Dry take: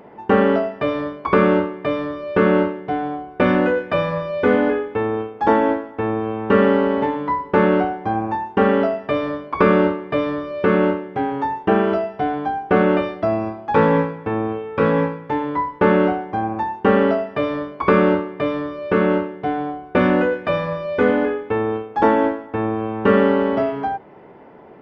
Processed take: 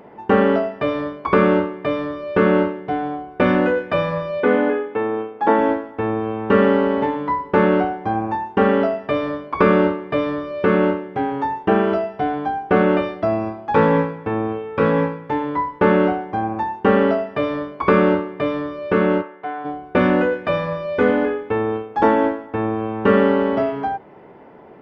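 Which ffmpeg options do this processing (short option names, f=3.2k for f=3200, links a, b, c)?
-filter_complex "[0:a]asettb=1/sr,asplit=3[a][b][c];[a]atrim=end=4.404[d];[b]atrim=start=4.4:end=5.59,asetpts=PTS-STARTPTS,afade=t=in:d=0.004:c=qsin,afade=t=out:st=1.186:d=0.004:c=qsin,highpass=190,lowpass=3.6k[e];[c]atrim=start=5.586[f];[d][e]acrossfade=d=0.004:c1=hsin:c2=qsin[g];[g][f]acrossfade=d=0.004:c1=qsin:c2=hsin,asplit=3[h][i][j];[h]afade=t=out:st=19.21:d=0.02[k];[i]bandpass=f=1.3k:t=q:w=0.94,afade=t=in:st=19.21:d=0.02,afade=t=out:st=19.64:d=0.02[l];[j]afade=t=in:st=19.64:d=0.02[m];[k][l][m]amix=inputs=3:normalize=0"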